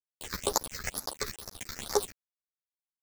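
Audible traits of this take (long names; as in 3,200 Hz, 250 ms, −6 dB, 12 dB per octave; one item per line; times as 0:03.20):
a quantiser's noise floor 6 bits, dither none
phaser sweep stages 6, 2.2 Hz, lowest notch 770–2,900 Hz
chopped level 9.5 Hz, depth 65%, duty 35%
a shimmering, thickened sound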